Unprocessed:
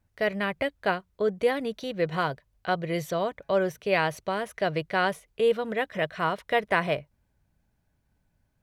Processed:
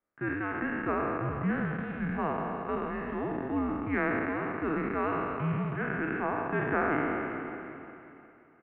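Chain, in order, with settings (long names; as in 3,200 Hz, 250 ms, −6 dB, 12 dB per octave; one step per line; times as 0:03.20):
peak hold with a decay on every bin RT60 2.57 s
on a send: repeating echo 355 ms, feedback 39%, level −12.5 dB
on the sum: single-sideband voice off tune −300 Hz 430–2,500 Hz
level −7.5 dB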